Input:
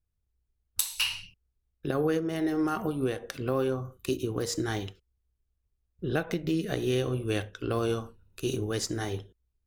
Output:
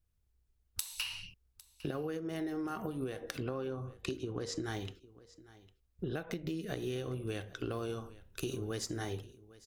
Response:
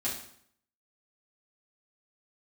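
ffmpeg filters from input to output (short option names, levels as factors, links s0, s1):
-filter_complex "[0:a]asettb=1/sr,asplit=3[s0][s1][s2];[s0]atrim=end=3.434[s3];[s1]atrim=start=3.43:end=4.64,asetpts=PTS-STARTPTS,afade=t=in:d=0.004:c=qsin,afade=t=out:st=1.206:d=0.004:c=qsin,lowpass=5900[s4];[s2]atrim=start=4.636[s5];[s3][s4]acrossfade=d=0.004:c1=hsin:c2=qsin[s6];[s6][s5]acrossfade=d=0.004:c1=qsin:c2=hsin,acompressor=threshold=0.0141:ratio=10,aecho=1:1:804:0.1,volume=1.33"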